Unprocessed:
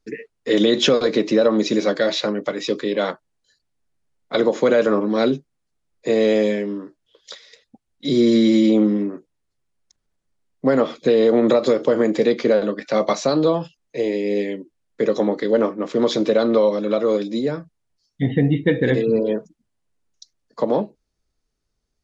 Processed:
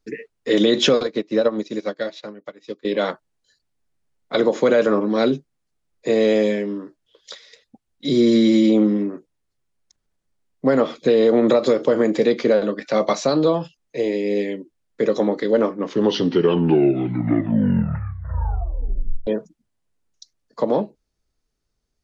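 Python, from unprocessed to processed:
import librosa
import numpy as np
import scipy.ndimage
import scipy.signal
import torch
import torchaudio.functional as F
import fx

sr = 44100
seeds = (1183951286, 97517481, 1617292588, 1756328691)

y = fx.upward_expand(x, sr, threshold_db=-32.0, expansion=2.5, at=(1.03, 2.85))
y = fx.edit(y, sr, fx.tape_stop(start_s=15.65, length_s=3.62), tone=tone)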